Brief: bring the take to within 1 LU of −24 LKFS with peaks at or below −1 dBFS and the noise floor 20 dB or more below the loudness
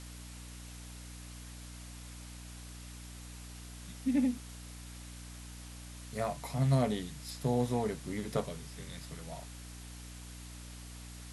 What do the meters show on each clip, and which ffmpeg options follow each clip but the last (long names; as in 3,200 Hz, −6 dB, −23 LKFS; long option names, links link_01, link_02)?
mains hum 60 Hz; hum harmonics up to 300 Hz; level of the hum −46 dBFS; background noise floor −48 dBFS; target noise floor −59 dBFS; integrated loudness −38.5 LKFS; sample peak −16.5 dBFS; target loudness −24.0 LKFS
→ -af "bandreject=frequency=60:width_type=h:width=4,bandreject=frequency=120:width_type=h:width=4,bandreject=frequency=180:width_type=h:width=4,bandreject=frequency=240:width_type=h:width=4,bandreject=frequency=300:width_type=h:width=4"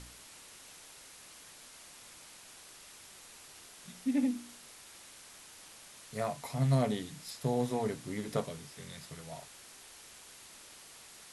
mains hum none found; background noise floor −54 dBFS; target noise floor −55 dBFS
→ -af "afftdn=noise_reduction=6:noise_floor=-54"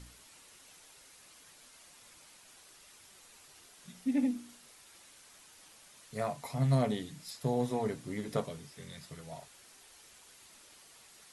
background noise floor −58 dBFS; integrated loudness −35.0 LKFS; sample peak −16.5 dBFS; target loudness −24.0 LKFS
→ -af "volume=11dB"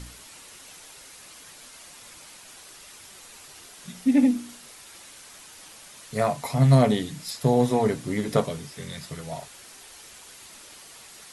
integrated loudness −24.0 LKFS; sample peak −5.5 dBFS; background noise floor −47 dBFS